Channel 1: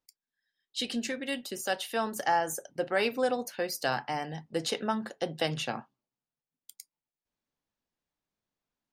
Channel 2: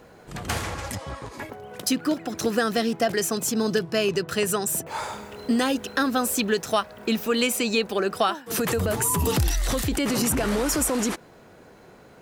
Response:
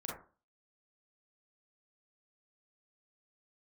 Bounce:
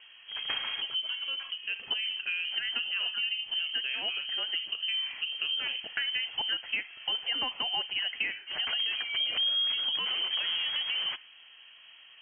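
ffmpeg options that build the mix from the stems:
-filter_complex "[0:a]tiltshelf=f=970:g=9.5,volume=0.422,asplit=3[s0][s1][s2];[s1]volume=0.251[s3];[1:a]volume=0.531,asplit=2[s4][s5];[s5]volume=0.112[s6];[s2]apad=whole_len=538695[s7];[s4][s7]sidechaincompress=threshold=0.00631:ratio=8:attack=7.4:release=134[s8];[2:a]atrim=start_sample=2205[s9];[s3][s6]amix=inputs=2:normalize=0[s10];[s10][s9]afir=irnorm=-1:irlink=0[s11];[s0][s8][s11]amix=inputs=3:normalize=0,lowshelf=f=80:g=10.5,lowpass=f=2800:t=q:w=0.5098,lowpass=f=2800:t=q:w=0.6013,lowpass=f=2800:t=q:w=0.9,lowpass=f=2800:t=q:w=2.563,afreqshift=-3300,acompressor=threshold=0.0355:ratio=3"

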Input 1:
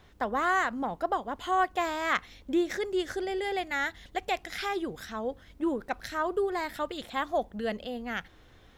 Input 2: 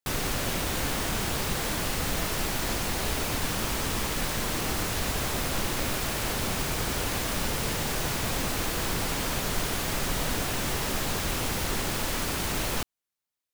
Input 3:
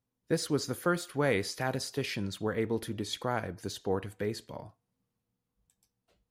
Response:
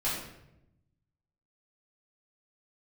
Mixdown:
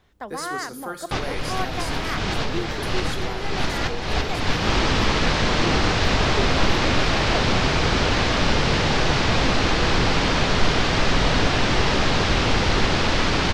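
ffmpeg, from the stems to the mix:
-filter_complex "[0:a]volume=0.631[s0];[1:a]lowpass=f=5100:w=0.5412,lowpass=f=5100:w=1.3066,acontrast=77,adelay=1050,volume=1.41,asplit=2[s1][s2];[s2]volume=0.075[s3];[2:a]bass=f=250:g=-9,treble=f=4000:g=7,volume=0.531,asplit=3[s4][s5][s6];[s5]volume=0.251[s7];[s6]apad=whole_len=643231[s8];[s1][s8]sidechaincompress=threshold=0.00631:ratio=8:attack=7.7:release=297[s9];[3:a]atrim=start_sample=2205[s10];[s3][s7]amix=inputs=2:normalize=0[s11];[s11][s10]afir=irnorm=-1:irlink=0[s12];[s0][s9][s4][s12]amix=inputs=4:normalize=0"

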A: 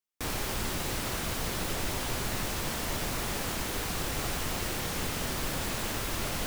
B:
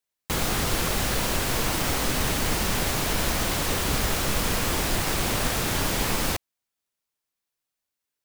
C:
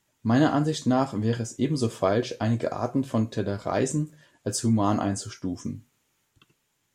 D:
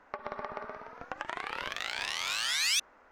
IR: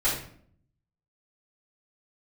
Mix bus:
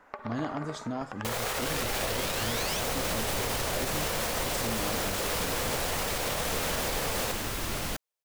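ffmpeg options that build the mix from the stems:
-filter_complex "[0:a]adelay=1500,volume=1[s0];[1:a]lowshelf=f=370:t=q:w=3:g=-9,adelay=950,volume=0.562[s1];[2:a]acompressor=threshold=0.0282:ratio=1.5,volume=0.422[s2];[3:a]acompressor=threshold=0.0224:ratio=6,volume=1.26[s3];[s0][s1][s2][s3]amix=inputs=4:normalize=0,alimiter=limit=0.0944:level=0:latency=1:release=33"

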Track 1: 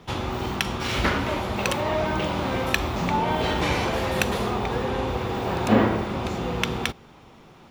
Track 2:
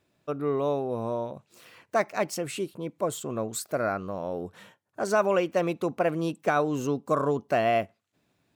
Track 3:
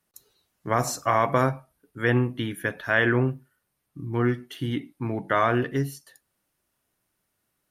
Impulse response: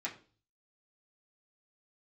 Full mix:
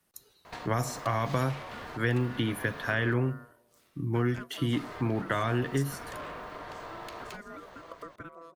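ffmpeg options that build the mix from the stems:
-filter_complex "[0:a]volume=12.6,asoftclip=hard,volume=0.0794,adelay=450,volume=1.06,asplit=3[s0][s1][s2];[s0]atrim=end=3.14,asetpts=PTS-STARTPTS,afade=t=out:st=3.136:d=0.004:c=hsin[s3];[s1]atrim=start=3.14:end=4.73,asetpts=PTS-STARTPTS,volume=0[s4];[s2]atrim=start=4.73,asetpts=PTS-STARTPTS,afade=t=in:d=0.004:c=hsin[s5];[s3][s4][s5]concat=n=3:v=0:a=1[s6];[1:a]equalizer=f=2300:w=1.4:g=-7,aeval=exprs='val(0)*pow(10,-21*if(lt(mod(1.4*n/s,1),2*abs(1.4)/1000),1-mod(1.4*n/s,1)/(2*abs(1.4)/1000),(mod(1.4*n/s,1)-2*abs(1.4)/1000)/(1-2*abs(1.4)/1000))/20)':c=same,adelay=2200,volume=0.708,asplit=2[s7][s8];[s8]volume=0.0891[s9];[2:a]acrossover=split=200|3300[s10][s11][s12];[s10]acompressor=threshold=0.0251:ratio=4[s13];[s11]acompressor=threshold=0.0251:ratio=4[s14];[s12]acompressor=threshold=0.00631:ratio=4[s15];[s13][s14][s15]amix=inputs=3:normalize=0,volume=1.33,asplit=2[s16][s17];[s17]apad=whole_len=359760[s18];[s6][s18]sidechaincompress=threshold=0.01:ratio=8:attack=28:release=307[s19];[s19][s7]amix=inputs=2:normalize=0,aeval=exprs='val(0)*sin(2*PI*830*n/s)':c=same,acompressor=threshold=0.01:ratio=5,volume=1[s20];[s9]aecho=0:1:164|328|492|656|820|984:1|0.44|0.194|0.0852|0.0375|0.0165[s21];[s16][s20][s21]amix=inputs=3:normalize=0"

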